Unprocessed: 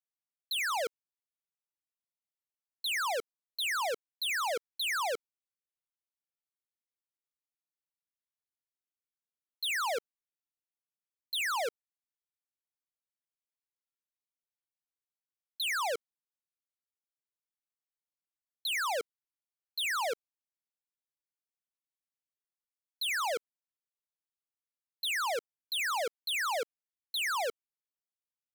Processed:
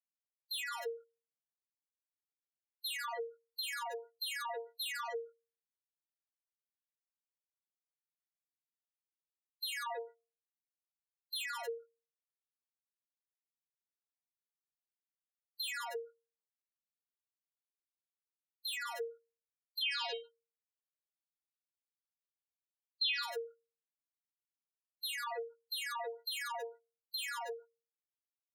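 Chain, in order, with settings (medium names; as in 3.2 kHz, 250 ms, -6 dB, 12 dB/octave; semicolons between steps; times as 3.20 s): small resonant body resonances 390/760/2000 Hz, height 10 dB, ringing for 40 ms; level held to a coarse grid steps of 18 dB; treble shelf 7.4 kHz +11 dB; speakerphone echo 110 ms, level -22 dB; AM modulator 22 Hz, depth 35%; compression 5:1, threshold -39 dBFS, peak gain reduction 6.5 dB; 19.81–23.22 s: high-order bell 3.4 kHz +11 dB 1.2 oct; inharmonic resonator 230 Hz, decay 0.41 s, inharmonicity 0.002; waveshaping leveller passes 2; spectral gate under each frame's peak -15 dB strong; trim +9.5 dB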